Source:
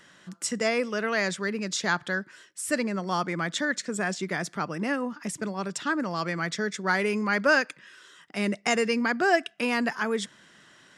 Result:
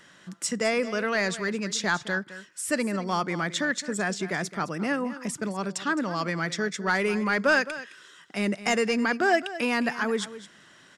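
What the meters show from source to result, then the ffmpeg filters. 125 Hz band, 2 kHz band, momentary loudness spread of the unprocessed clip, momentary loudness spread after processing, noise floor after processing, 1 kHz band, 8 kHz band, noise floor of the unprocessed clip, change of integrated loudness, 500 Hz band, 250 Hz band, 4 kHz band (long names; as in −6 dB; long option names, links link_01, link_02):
+1.0 dB, +0.5 dB, 9 LU, 8 LU, −55 dBFS, +0.5 dB, +1.0 dB, −56 dBFS, +0.5 dB, +0.5 dB, +1.0 dB, +0.5 dB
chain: -af "asoftclip=type=tanh:threshold=-13dB,aecho=1:1:214:0.188,volume=1dB"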